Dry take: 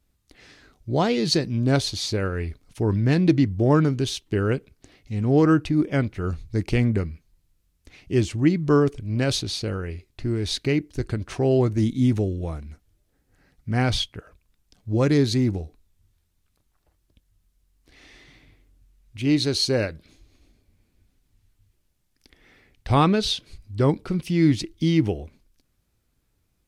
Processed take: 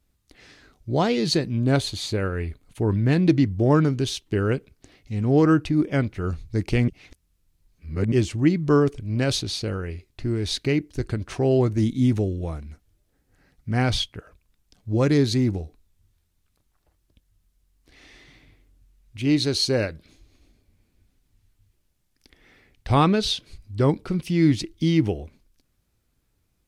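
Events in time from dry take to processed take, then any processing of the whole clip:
1.32–3.23 bell 5400 Hz -9.5 dB 0.34 oct
6.88–8.12 reverse

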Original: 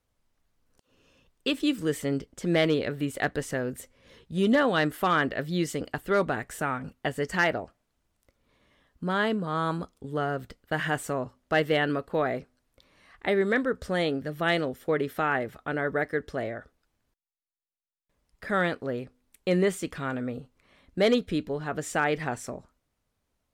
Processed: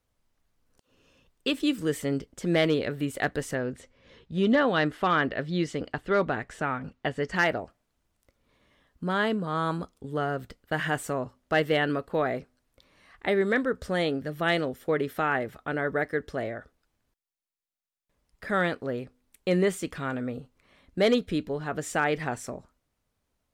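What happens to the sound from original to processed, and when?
3.55–7.36 LPF 5100 Hz

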